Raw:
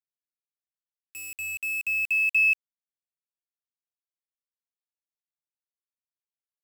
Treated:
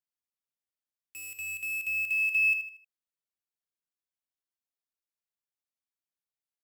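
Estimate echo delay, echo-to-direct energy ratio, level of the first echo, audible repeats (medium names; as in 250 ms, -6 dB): 78 ms, -8.5 dB, -9.0 dB, 3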